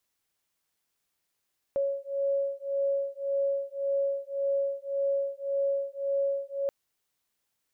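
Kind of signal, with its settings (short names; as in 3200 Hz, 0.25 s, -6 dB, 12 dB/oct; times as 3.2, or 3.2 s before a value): beating tones 554 Hz, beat 1.8 Hz, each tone -29.5 dBFS 4.93 s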